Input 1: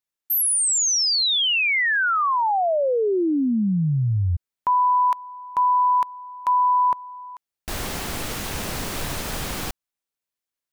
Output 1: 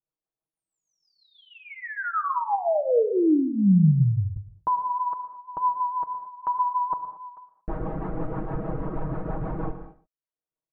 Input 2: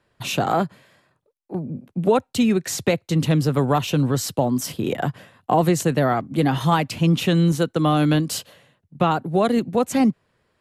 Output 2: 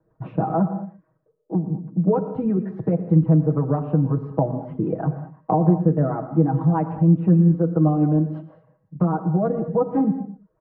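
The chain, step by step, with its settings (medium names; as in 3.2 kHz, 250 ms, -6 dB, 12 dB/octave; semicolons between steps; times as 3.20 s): reverb removal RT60 0.51 s; low-pass 1.1 kHz 24 dB/octave; comb 6.3 ms, depth 91%; dynamic bell 200 Hz, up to +6 dB, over -31 dBFS, Q 2.1; compression 1.5:1, threshold -27 dBFS; rotary cabinet horn 6.3 Hz; echo from a far wall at 20 m, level -16 dB; gated-style reverb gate 250 ms flat, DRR 9 dB; trim +2.5 dB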